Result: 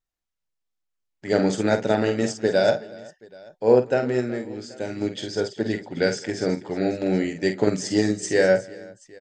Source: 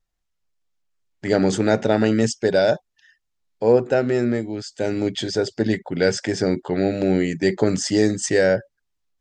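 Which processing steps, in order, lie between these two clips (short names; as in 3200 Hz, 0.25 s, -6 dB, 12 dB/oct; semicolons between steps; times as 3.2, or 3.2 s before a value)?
low shelf 120 Hz -6 dB; tapped delay 48/206/370/781 ms -6/-19/-17/-19.5 dB; upward expander 1.5:1, over -26 dBFS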